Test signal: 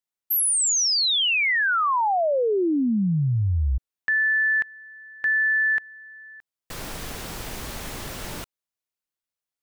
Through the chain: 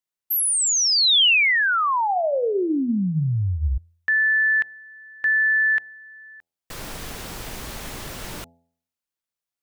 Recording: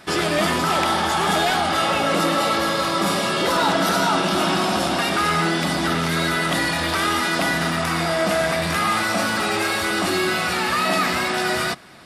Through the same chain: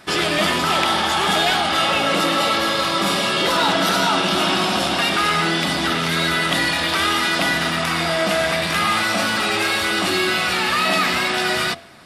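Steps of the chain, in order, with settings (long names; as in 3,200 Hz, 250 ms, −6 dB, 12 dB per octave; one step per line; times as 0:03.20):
hum removal 84.41 Hz, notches 10
dynamic equaliser 3,100 Hz, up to +6 dB, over −39 dBFS, Q 1.1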